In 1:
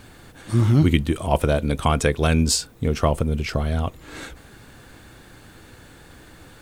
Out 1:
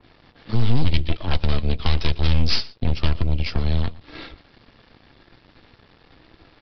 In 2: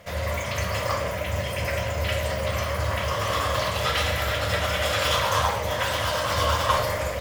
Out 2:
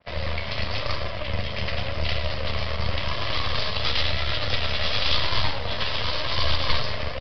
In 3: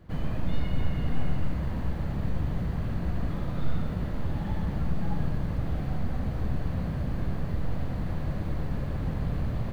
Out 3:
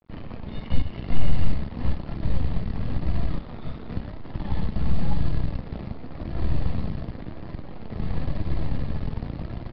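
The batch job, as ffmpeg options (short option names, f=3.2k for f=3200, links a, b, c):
-filter_complex "[0:a]bandreject=f=1.5k:w=6.5,aeval=exprs='0.668*(cos(1*acos(clip(val(0)/0.668,-1,1)))-cos(1*PI/2))+0.168*(cos(8*acos(clip(val(0)/0.668,-1,1)))-cos(8*PI/2))':c=same,acrossover=split=130|3000[a][b][c];[b]acompressor=threshold=-33dB:ratio=2.5[d];[a][d][c]amix=inputs=3:normalize=0,asplit=2[e][f];[f]asoftclip=type=hard:threshold=-13.5dB,volume=-6dB[g];[e][g]amix=inputs=2:normalize=0,flanger=delay=2.9:depth=1.8:regen=72:speed=0.94:shape=sinusoidal,aresample=11025,aeval=exprs='sgn(val(0))*max(abs(val(0))-0.00376,0)':c=same,aresample=44100,asplit=2[h][i];[i]adelay=116.6,volume=-20dB,highshelf=f=4k:g=-2.62[j];[h][j]amix=inputs=2:normalize=0,adynamicequalizer=threshold=0.00562:dfrequency=2500:dqfactor=0.7:tfrequency=2500:tqfactor=0.7:attack=5:release=100:ratio=0.375:range=1.5:mode=boostabove:tftype=highshelf,volume=1.5dB"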